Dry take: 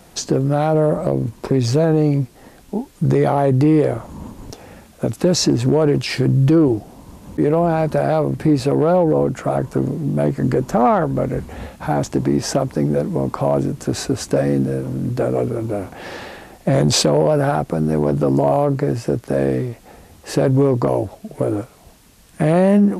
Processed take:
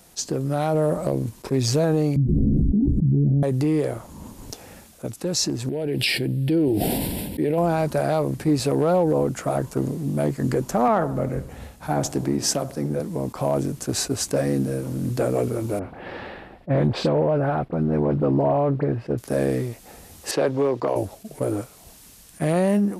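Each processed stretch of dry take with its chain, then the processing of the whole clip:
2.16–3.43 s: inverse Chebyshev low-pass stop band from 890 Hz, stop band 60 dB + doubling 14 ms -3 dB + level flattener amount 100%
5.69–7.58 s: bass shelf 120 Hz -9.5 dB + static phaser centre 2.8 kHz, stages 4 + decay stretcher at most 21 dB/s
10.88–13.00 s: feedback echo behind a low-pass 75 ms, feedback 53%, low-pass 1.4 kHz, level -13 dB + three bands expanded up and down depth 40%
15.79–19.18 s: distance through air 440 m + phase dispersion highs, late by 44 ms, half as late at 2.4 kHz
20.31–20.96 s: high-pass 98 Hz + three-band isolator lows -12 dB, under 340 Hz, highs -19 dB, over 5 kHz
whole clip: treble shelf 4.1 kHz +11 dB; level rider; attacks held to a fixed rise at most 550 dB/s; trim -9 dB

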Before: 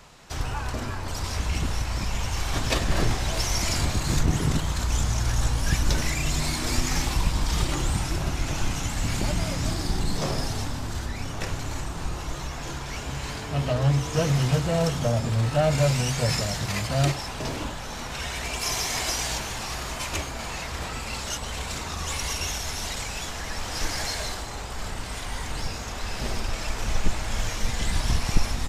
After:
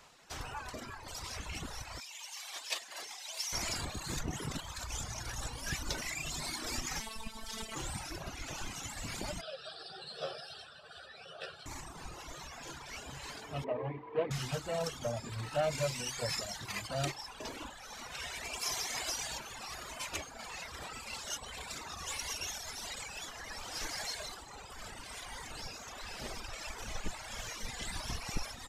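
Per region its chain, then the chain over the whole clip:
2.00–3.53 s: high-pass 1 kHz + peaking EQ 1.4 kHz -8 dB 0.88 oct
7.00–7.76 s: one-bit delta coder 64 kbps, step -30 dBFS + robot voice 222 Hz
9.41–11.66 s: cabinet simulation 240–8100 Hz, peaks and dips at 250 Hz -8 dB, 1.1 kHz -5 dB, 6.9 kHz -4 dB + static phaser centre 1.4 kHz, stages 8 + doubling 13 ms -2 dB
13.64–14.31 s: median filter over 15 samples + cabinet simulation 130–3100 Hz, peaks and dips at 160 Hz -6 dB, 290 Hz +3 dB, 430 Hz +8 dB, 980 Hz +4 dB, 1.4 kHz -8 dB, 2.2 kHz +4 dB
whole clip: reverb removal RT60 1.9 s; bass shelf 240 Hz -10.5 dB; trim -6.5 dB

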